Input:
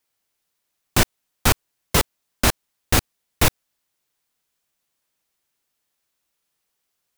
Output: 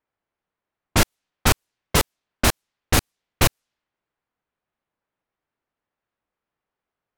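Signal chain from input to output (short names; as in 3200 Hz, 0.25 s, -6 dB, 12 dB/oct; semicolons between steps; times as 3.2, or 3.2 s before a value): low-pass opened by the level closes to 1600 Hz, open at -17.5 dBFS; record warp 45 rpm, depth 160 cents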